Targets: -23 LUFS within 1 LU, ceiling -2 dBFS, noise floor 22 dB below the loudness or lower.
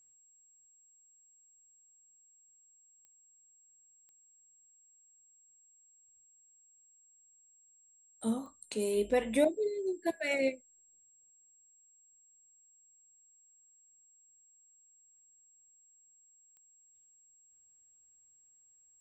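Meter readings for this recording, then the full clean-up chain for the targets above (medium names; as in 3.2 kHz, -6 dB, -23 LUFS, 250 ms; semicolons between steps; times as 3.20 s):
clicks found 4; steady tone 7.6 kHz; tone level -62 dBFS; loudness -33.0 LUFS; peak level -16.0 dBFS; loudness target -23.0 LUFS
-> de-click; band-stop 7.6 kHz, Q 30; trim +10 dB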